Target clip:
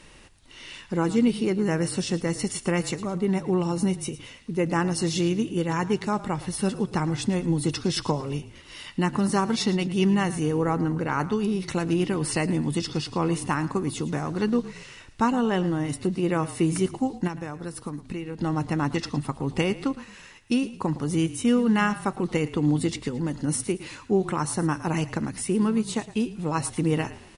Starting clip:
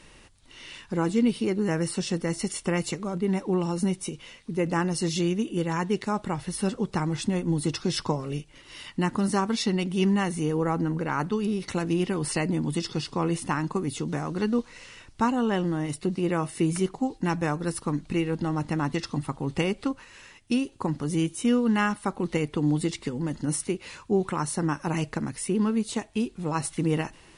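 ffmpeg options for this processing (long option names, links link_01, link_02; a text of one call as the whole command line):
ffmpeg -i in.wav -filter_complex "[0:a]asettb=1/sr,asplit=3[link_01][link_02][link_03];[link_01]atrim=end=17.274[link_04];[link_02]atrim=start=17.27:end=18.38,asetpts=PTS-STARTPTS,afade=type=in:duration=0.004:curve=qsin,afade=type=out:start_time=1.106:duration=0.004:curve=qsin,acompressor=threshold=-32dB:ratio=6[link_05];[link_03]atrim=start=18.376[link_06];[link_04][link_05]acrossfade=duration=0.004:curve1=hsin:curve2=qsin[link_07];[link_07][link_06]acrossfade=duration=0.004:curve1=qsin:curve2=hsin,asplit=4[link_08][link_09][link_10][link_11];[link_09]adelay=111,afreqshift=-33,volume=-16dB[link_12];[link_10]adelay=222,afreqshift=-66,volume=-24.9dB[link_13];[link_11]adelay=333,afreqshift=-99,volume=-33.7dB[link_14];[link_08][link_12][link_13][link_14]amix=inputs=4:normalize=0,volume=1.5dB" out.wav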